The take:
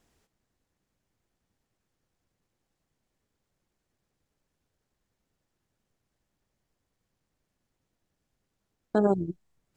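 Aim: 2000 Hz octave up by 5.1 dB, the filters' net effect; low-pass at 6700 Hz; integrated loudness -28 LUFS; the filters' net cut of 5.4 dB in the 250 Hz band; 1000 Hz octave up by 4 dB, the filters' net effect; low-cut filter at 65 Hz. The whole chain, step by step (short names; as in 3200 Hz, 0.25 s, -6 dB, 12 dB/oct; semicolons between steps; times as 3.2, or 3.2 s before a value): HPF 65 Hz; LPF 6700 Hz; bell 250 Hz -8 dB; bell 1000 Hz +5 dB; bell 2000 Hz +5 dB; gain +0.5 dB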